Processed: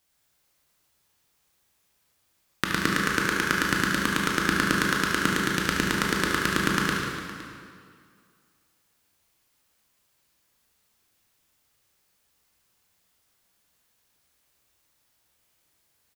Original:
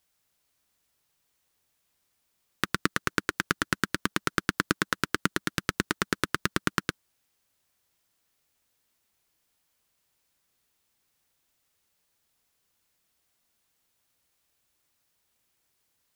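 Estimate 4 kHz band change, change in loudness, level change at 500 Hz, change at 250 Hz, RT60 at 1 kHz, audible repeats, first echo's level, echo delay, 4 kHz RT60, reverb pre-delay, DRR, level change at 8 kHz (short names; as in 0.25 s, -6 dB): +5.0 dB, +5.0 dB, +5.0 dB, +5.5 dB, 2.1 s, 3, -7.0 dB, 73 ms, 1.8 s, 16 ms, -2.5 dB, +4.5 dB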